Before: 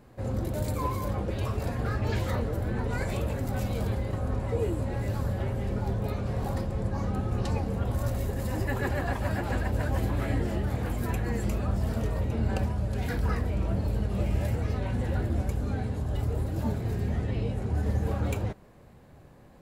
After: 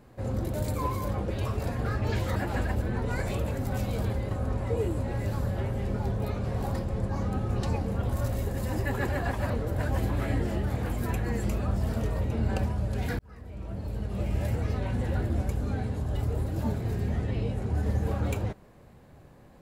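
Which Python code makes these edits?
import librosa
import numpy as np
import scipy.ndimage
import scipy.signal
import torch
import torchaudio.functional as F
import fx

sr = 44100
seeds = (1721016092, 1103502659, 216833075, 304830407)

y = fx.edit(x, sr, fx.swap(start_s=2.36, length_s=0.28, other_s=9.32, other_length_s=0.46),
    fx.fade_in_span(start_s=13.19, length_s=1.36), tone=tone)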